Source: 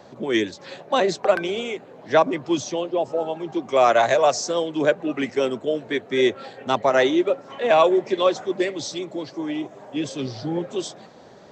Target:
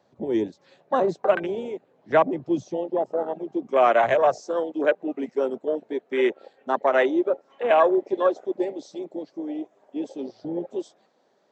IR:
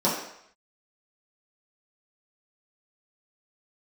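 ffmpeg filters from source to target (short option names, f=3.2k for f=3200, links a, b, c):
-af "asetnsamples=n=441:p=0,asendcmd='4.39 highpass f 260',highpass=62,afwtdn=0.0562,volume=-1.5dB"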